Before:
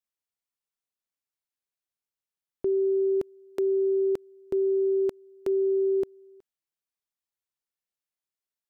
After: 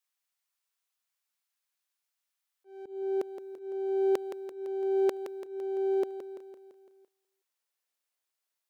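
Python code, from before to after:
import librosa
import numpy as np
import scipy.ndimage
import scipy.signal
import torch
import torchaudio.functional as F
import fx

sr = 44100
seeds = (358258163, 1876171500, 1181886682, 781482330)

y = np.where(x < 0.0, 10.0 ** (-3.0 / 20.0) * x, x)
y = fx.highpass(y, sr, hz=fx.steps((0.0, 850.0), (2.86, 440.0)), slope=12)
y = fx.rider(y, sr, range_db=3, speed_s=0.5)
y = fx.auto_swell(y, sr, attack_ms=672.0)
y = fx.echo_feedback(y, sr, ms=169, feedback_pct=56, wet_db=-10)
y = F.gain(torch.from_numpy(y), 8.5).numpy()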